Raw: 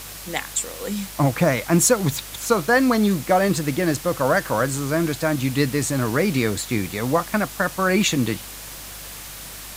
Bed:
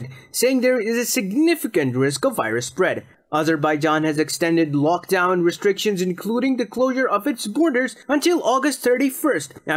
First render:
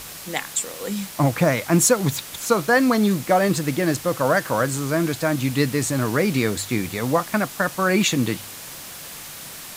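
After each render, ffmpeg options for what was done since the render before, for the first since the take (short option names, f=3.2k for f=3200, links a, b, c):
-af "bandreject=f=50:t=h:w=4,bandreject=f=100:t=h:w=4"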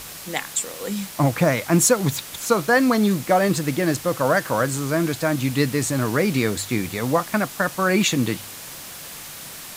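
-af anull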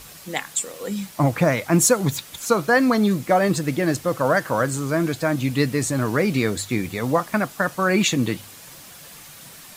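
-af "afftdn=nr=7:nf=-37"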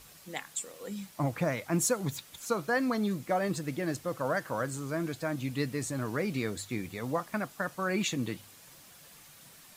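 -af "volume=-11.5dB"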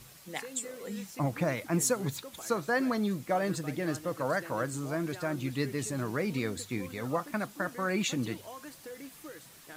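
-filter_complex "[1:a]volume=-27.5dB[a];[0:a][a]amix=inputs=2:normalize=0"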